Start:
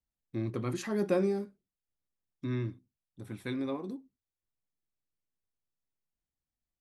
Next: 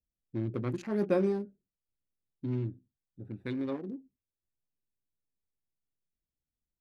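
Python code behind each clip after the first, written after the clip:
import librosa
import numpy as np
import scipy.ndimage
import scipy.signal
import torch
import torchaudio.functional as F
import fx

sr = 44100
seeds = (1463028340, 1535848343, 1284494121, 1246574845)

y = fx.wiener(x, sr, points=41)
y = fx.high_shelf(y, sr, hz=5600.0, db=-9.0)
y = y * librosa.db_to_amplitude(1.0)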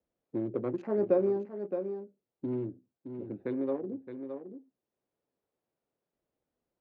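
y = fx.bandpass_q(x, sr, hz=520.0, q=1.4)
y = y + 10.0 ** (-12.0 / 20.0) * np.pad(y, (int(617 * sr / 1000.0), 0))[:len(y)]
y = fx.band_squash(y, sr, depth_pct=40)
y = y * librosa.db_to_amplitude(7.0)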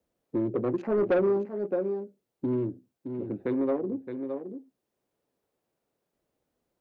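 y = 10.0 ** (-25.0 / 20.0) * np.tanh(x / 10.0 ** (-25.0 / 20.0))
y = y * librosa.db_to_amplitude(6.5)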